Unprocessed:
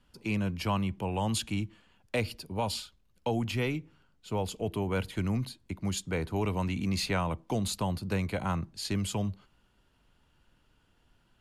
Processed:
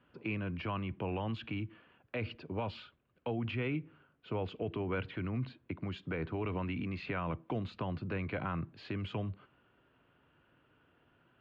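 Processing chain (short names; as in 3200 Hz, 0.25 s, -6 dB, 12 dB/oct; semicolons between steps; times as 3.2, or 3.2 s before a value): dynamic EQ 590 Hz, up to -6 dB, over -45 dBFS, Q 0.72; limiter -29 dBFS, peak gain reduction 9 dB; speaker cabinet 140–2500 Hz, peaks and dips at 200 Hz -9 dB, 870 Hz -6 dB, 2000 Hz -4 dB; gain +5 dB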